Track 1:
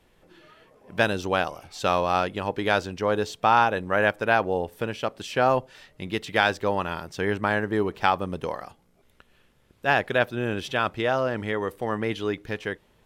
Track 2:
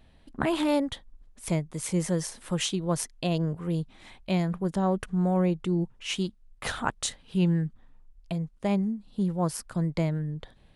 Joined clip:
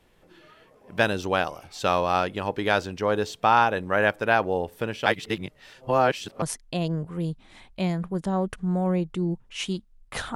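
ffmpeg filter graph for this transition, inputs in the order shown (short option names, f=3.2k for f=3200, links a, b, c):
-filter_complex "[0:a]apad=whole_dur=10.35,atrim=end=10.35,asplit=2[a][b];[a]atrim=end=5.062[c];[b]atrim=start=5.058:end=6.422,asetpts=PTS-STARTPTS,areverse[d];[1:a]atrim=start=2.918:end=6.85[e];[c][d]acrossfade=d=0.004:c1=hsin:c2=hsin[f];[f][e]acrossfade=d=0.004:c1=hsin:c2=hsin"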